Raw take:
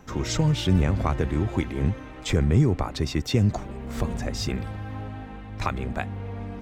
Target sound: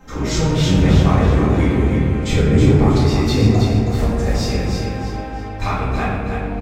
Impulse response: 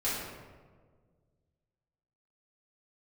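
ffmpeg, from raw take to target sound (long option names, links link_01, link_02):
-filter_complex "[0:a]aecho=1:1:321|642|963|1284|1605:0.562|0.208|0.077|0.0285|0.0105[link_01];[1:a]atrim=start_sample=2205,afade=type=out:start_time=0.36:duration=0.01,atrim=end_sample=16317[link_02];[link_01][link_02]afir=irnorm=-1:irlink=0"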